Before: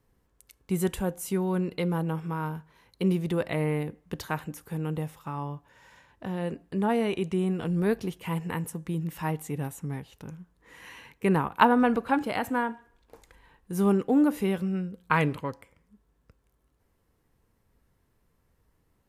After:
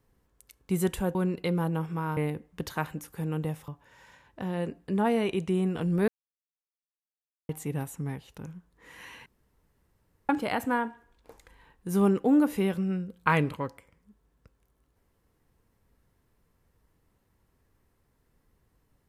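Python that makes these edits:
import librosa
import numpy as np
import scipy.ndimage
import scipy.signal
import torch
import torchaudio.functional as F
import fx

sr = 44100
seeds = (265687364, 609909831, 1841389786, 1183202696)

y = fx.edit(x, sr, fx.cut(start_s=1.15, length_s=0.34),
    fx.cut(start_s=2.51, length_s=1.19),
    fx.cut(start_s=5.21, length_s=0.31),
    fx.silence(start_s=7.92, length_s=1.41),
    fx.room_tone_fill(start_s=11.1, length_s=1.03), tone=tone)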